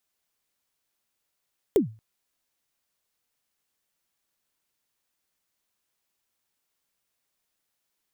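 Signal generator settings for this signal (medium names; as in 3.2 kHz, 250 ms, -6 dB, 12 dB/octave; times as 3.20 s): kick drum length 0.23 s, from 460 Hz, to 110 Hz, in 119 ms, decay 0.33 s, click on, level -12.5 dB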